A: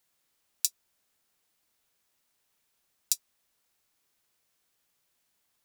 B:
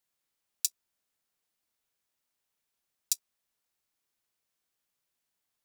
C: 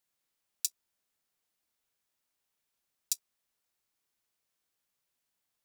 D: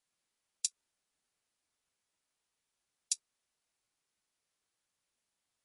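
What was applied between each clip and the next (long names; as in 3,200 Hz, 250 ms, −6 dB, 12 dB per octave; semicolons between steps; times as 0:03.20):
output level in coarse steps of 12 dB
brickwall limiter −9.5 dBFS, peak gain reduction 3 dB
MP3 48 kbit/s 24,000 Hz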